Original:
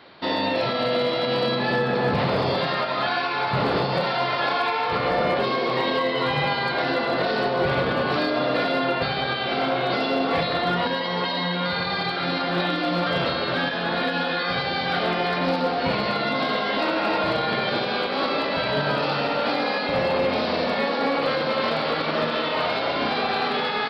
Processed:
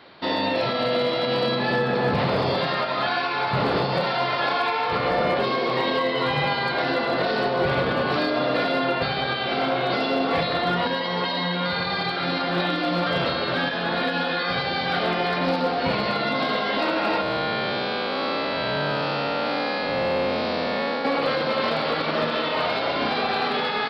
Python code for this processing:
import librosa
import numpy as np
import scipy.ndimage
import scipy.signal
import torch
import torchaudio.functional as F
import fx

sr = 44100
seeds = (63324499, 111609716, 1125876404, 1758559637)

y = fx.spec_blur(x, sr, span_ms=186.0, at=(17.21, 21.05))